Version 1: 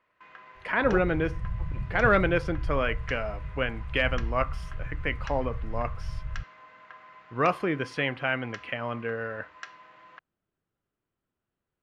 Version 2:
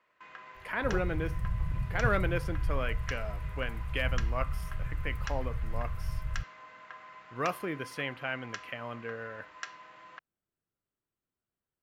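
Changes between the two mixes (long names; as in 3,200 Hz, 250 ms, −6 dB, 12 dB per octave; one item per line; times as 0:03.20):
speech −8.0 dB
master: remove high-frequency loss of the air 98 metres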